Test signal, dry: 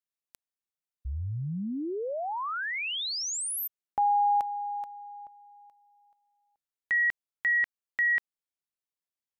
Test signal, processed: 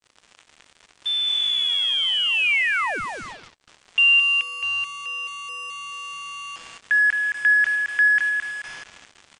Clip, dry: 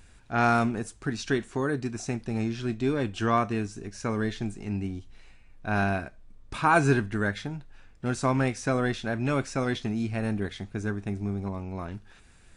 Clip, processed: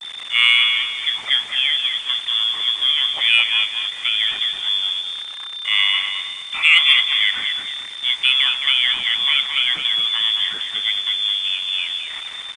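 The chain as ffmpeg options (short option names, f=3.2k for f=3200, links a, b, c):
-filter_complex "[0:a]aeval=exprs='val(0)+0.5*0.0211*sgn(val(0))':c=same,lowpass=f=3.1k:t=q:w=0.5098,lowpass=f=3.1k:t=q:w=0.6013,lowpass=f=3.1k:t=q:w=0.9,lowpass=f=3.1k:t=q:w=2.563,afreqshift=-3600,acrossover=split=540|890[a][b][c];[c]acontrast=56[d];[a][b][d]amix=inputs=3:normalize=0,adynamicequalizer=threshold=0.0158:dfrequency=2300:dqfactor=3.3:tfrequency=2300:tqfactor=3.3:attack=5:release=100:ratio=0.375:range=2:mode=boostabove:tftype=bell,asplit=2[e][f];[f]adelay=217,lowpass=f=2.8k:p=1,volume=-4.5dB,asplit=2[g][h];[h]adelay=217,lowpass=f=2.8k:p=1,volume=0.45,asplit=2[i][j];[j]adelay=217,lowpass=f=2.8k:p=1,volume=0.45,asplit=2[k][l];[l]adelay=217,lowpass=f=2.8k:p=1,volume=0.45,asplit=2[m][n];[n]adelay=217,lowpass=f=2.8k:p=1,volume=0.45,asplit=2[o][p];[p]adelay=217,lowpass=f=2.8k:p=1,volume=0.45[q];[e][g][i][k][m][o][q]amix=inputs=7:normalize=0,acrusher=bits=5:mix=0:aa=0.5" -ar 32000 -c:a mp2 -b:a 192k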